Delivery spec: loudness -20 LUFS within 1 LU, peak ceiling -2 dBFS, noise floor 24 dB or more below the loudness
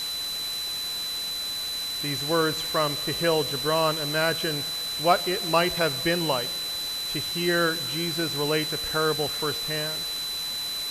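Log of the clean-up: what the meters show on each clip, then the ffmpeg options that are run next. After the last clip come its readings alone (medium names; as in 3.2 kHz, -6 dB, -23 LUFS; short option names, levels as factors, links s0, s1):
steady tone 4 kHz; tone level -29 dBFS; noise floor -31 dBFS; noise floor target -50 dBFS; loudness -25.5 LUFS; peak level -8.0 dBFS; loudness target -20.0 LUFS
-> -af "bandreject=f=4000:w=30"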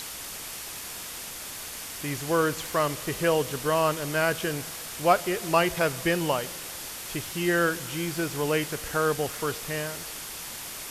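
steady tone not found; noise floor -38 dBFS; noise floor target -52 dBFS
-> -af "afftdn=nr=14:nf=-38"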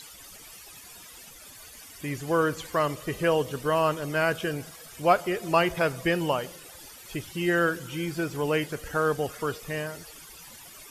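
noise floor -48 dBFS; noise floor target -52 dBFS
-> -af "afftdn=nr=6:nf=-48"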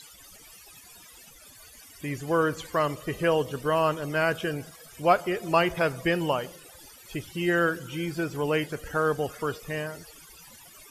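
noise floor -51 dBFS; noise floor target -52 dBFS
-> -af "afftdn=nr=6:nf=-51"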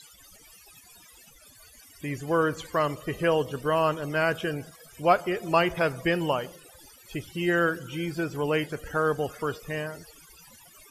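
noise floor -54 dBFS; loudness -27.5 LUFS; peak level -8.5 dBFS; loudness target -20.0 LUFS
-> -af "volume=2.37,alimiter=limit=0.794:level=0:latency=1"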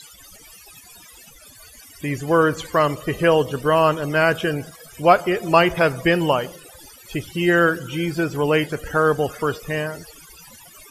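loudness -20.0 LUFS; peak level -2.0 dBFS; noise floor -46 dBFS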